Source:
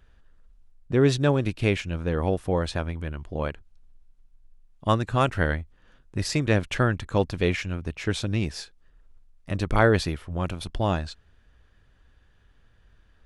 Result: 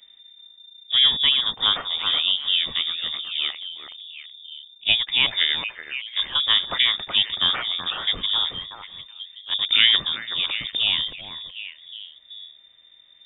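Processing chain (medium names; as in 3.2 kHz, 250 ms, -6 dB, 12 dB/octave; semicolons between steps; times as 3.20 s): repeats whose band climbs or falls 375 ms, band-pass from 2.7 kHz, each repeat -1.4 oct, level -4 dB; harmony voices +3 st -15 dB; frequency inversion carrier 3.6 kHz; trim +1.5 dB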